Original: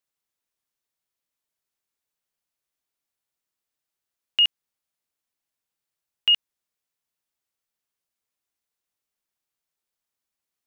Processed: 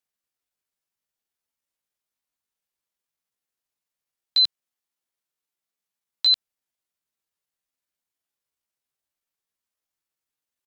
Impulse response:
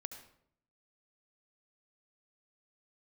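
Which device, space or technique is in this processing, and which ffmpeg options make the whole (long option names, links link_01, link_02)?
chipmunk voice: -filter_complex "[0:a]asettb=1/sr,asplit=3[link_01][link_02][link_03];[link_01]atrim=end=4.414[link_04];[link_02]atrim=start=4.41:end=6.3,asetpts=PTS-STARTPTS,afade=type=in:duration=0.004:curve=qsin,afade=type=out:start_time=1.886:duration=0.004:curve=qsin,highpass=frequency=99:poles=1[link_05];[link_03]atrim=start=6.296[link_06];[link_04][link_05]acrossfade=duration=0.004:curve1=hsin:curve2=qsin[link_07];[link_07][link_06]acrossfade=duration=0.004:curve1=qsin:curve2=hsin,asetrate=62367,aresample=44100,atempo=0.707107"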